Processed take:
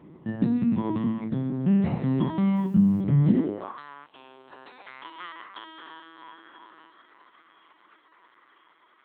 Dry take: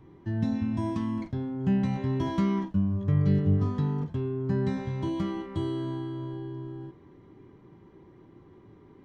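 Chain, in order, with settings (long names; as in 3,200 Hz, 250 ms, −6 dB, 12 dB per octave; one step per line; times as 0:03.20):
on a send: feedback delay with all-pass diffusion 1,038 ms, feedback 58%, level −15.5 dB
on the sum: linear-prediction vocoder at 8 kHz pitch kept
hum removal 55.78 Hz, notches 9
in parallel at −1 dB: brickwall limiter −22 dBFS, peak gain reduction 10.5 dB
on the sum: high-pass filter sweep 160 Hz → 1,400 Hz, 0:03.27–0:03.83
0:02.56–0:03.01: bit-depth reduction 10 bits, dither none
0:04.06–0:04.87: flat-topped bell 1,600 Hz −12.5 dB 1.1 octaves
level −2.5 dB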